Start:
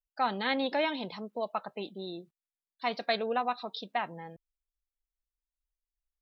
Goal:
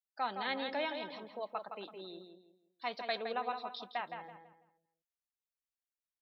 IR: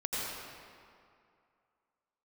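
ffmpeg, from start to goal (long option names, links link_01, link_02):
-filter_complex "[0:a]highpass=frequency=370:poles=1,asplit=2[link_01][link_02];[link_02]adelay=165,lowpass=frequency=3100:poles=1,volume=-6.5dB,asplit=2[link_03][link_04];[link_04]adelay=165,lowpass=frequency=3100:poles=1,volume=0.34,asplit=2[link_05][link_06];[link_06]adelay=165,lowpass=frequency=3100:poles=1,volume=0.34,asplit=2[link_07][link_08];[link_08]adelay=165,lowpass=frequency=3100:poles=1,volume=0.34[link_09];[link_01][link_03][link_05][link_07][link_09]amix=inputs=5:normalize=0,volume=-6dB"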